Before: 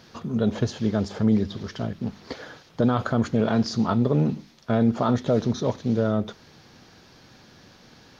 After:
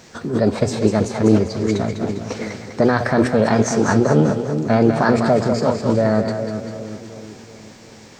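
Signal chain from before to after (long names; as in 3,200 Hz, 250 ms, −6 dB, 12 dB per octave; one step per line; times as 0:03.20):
mains-hum notches 60/120 Hz
echo with a time of its own for lows and highs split 440 Hz, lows 375 ms, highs 200 ms, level −7 dB
formants moved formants +4 semitones
level +6 dB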